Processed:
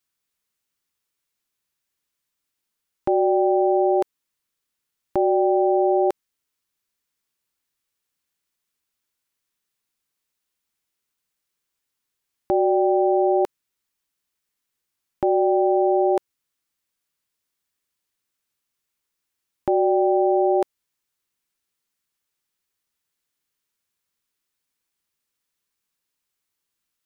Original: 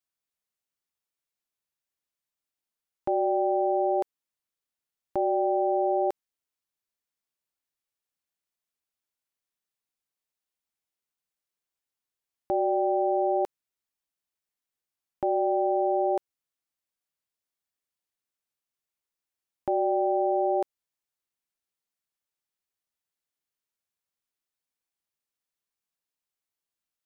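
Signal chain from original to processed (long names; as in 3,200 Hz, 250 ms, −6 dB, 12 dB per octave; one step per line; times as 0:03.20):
parametric band 680 Hz −6.5 dB 0.62 octaves
level +9 dB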